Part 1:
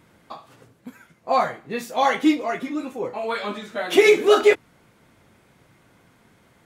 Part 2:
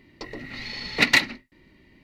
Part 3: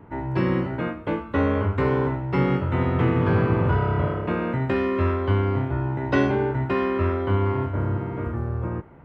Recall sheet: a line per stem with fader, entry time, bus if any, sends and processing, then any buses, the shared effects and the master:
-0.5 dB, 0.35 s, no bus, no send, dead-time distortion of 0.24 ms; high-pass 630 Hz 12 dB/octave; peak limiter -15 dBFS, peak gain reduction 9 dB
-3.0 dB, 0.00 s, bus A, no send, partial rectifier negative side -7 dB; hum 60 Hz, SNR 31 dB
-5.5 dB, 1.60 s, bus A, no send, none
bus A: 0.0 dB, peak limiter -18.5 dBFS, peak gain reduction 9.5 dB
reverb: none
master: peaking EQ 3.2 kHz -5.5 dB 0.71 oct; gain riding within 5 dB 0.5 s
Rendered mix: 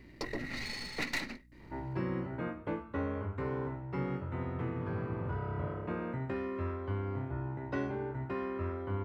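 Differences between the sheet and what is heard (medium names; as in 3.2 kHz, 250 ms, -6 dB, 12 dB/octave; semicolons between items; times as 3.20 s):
stem 1: muted; stem 3 -5.5 dB -> -13.5 dB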